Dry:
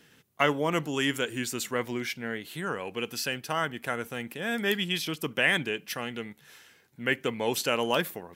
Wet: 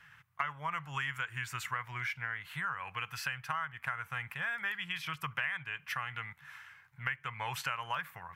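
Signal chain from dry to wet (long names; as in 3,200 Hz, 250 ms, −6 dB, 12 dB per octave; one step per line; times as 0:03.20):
drawn EQ curve 140 Hz 0 dB, 240 Hz −27 dB, 430 Hz −24 dB, 1,100 Hz +6 dB, 2,200 Hz +2 dB, 3,800 Hz −11 dB, 7,900 Hz −13 dB
downward compressor 6 to 1, threshold −35 dBFS, peak gain reduction 16.5 dB
level +2 dB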